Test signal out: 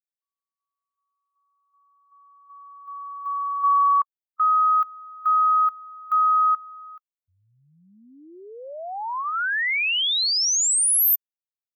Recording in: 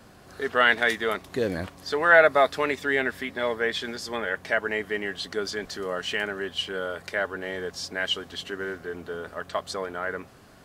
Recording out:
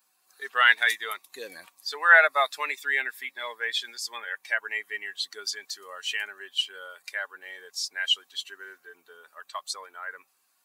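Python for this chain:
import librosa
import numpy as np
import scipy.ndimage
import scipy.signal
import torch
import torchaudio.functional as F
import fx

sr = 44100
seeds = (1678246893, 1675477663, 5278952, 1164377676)

y = fx.bin_expand(x, sr, power=1.5)
y = scipy.signal.sosfilt(scipy.signal.butter(2, 1200.0, 'highpass', fs=sr, output='sos'), y)
y = fx.high_shelf(y, sr, hz=10000.0, db=7.0)
y = F.gain(torch.from_numpy(y), 4.5).numpy()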